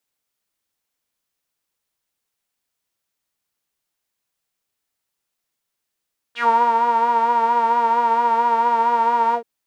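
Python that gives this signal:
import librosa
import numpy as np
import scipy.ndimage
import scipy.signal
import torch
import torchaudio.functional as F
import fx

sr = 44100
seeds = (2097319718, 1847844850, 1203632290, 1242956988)

y = fx.sub_patch_vibrato(sr, seeds[0], note=70, wave='saw', wave2='saw', interval_st=0, detune_cents=27, level2_db=-9.0, sub_db=-5.0, noise_db=-30.0, kind='bandpass', cutoff_hz=450.0, q=6.0, env_oct=3.0, env_decay_s=0.1, env_sustain_pct=35, attack_ms=88.0, decay_s=0.32, sustain_db=-3.0, release_s=0.09, note_s=2.99, lfo_hz=4.4, vibrato_cents=38)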